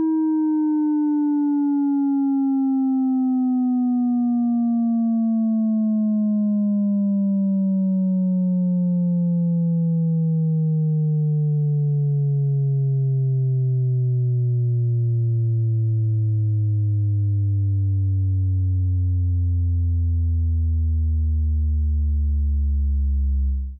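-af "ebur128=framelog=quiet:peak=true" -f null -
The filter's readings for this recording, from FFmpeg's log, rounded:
Integrated loudness:
  I:         -21.0 LUFS
  Threshold: -31.0 LUFS
Loudness range:
  LRA:         1.5 LU
  Threshold: -40.9 LUFS
  LRA low:   -21.9 LUFS
  LRA high:  -20.4 LUFS
True peak:
  Peak:      -17.4 dBFS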